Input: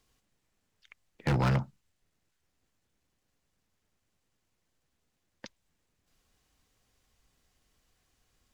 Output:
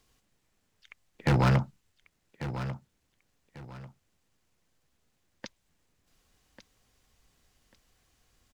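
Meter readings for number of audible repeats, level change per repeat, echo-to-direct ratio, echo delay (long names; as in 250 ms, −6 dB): 2, −11.0 dB, −11.0 dB, 1,143 ms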